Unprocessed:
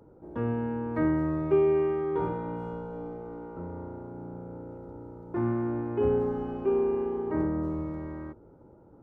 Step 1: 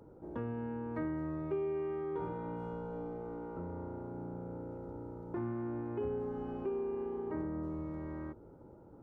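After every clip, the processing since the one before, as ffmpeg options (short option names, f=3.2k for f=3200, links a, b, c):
-af "acompressor=threshold=-38dB:ratio=2.5,volume=-1dB"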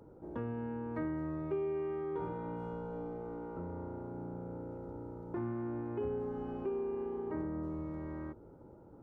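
-af anull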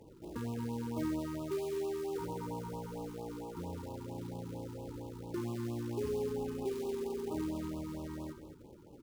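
-filter_complex "[0:a]acrusher=bits=4:mode=log:mix=0:aa=0.000001,asplit=2[a][b];[b]aecho=0:1:67.06|212.8:0.282|0.316[c];[a][c]amix=inputs=2:normalize=0,afftfilt=real='re*(1-between(b*sr/1024,580*pow(1800/580,0.5+0.5*sin(2*PI*4.4*pts/sr))/1.41,580*pow(1800/580,0.5+0.5*sin(2*PI*4.4*pts/sr))*1.41))':imag='im*(1-between(b*sr/1024,580*pow(1800/580,0.5+0.5*sin(2*PI*4.4*pts/sr))/1.41,580*pow(1800/580,0.5+0.5*sin(2*PI*4.4*pts/sr))*1.41))':win_size=1024:overlap=0.75"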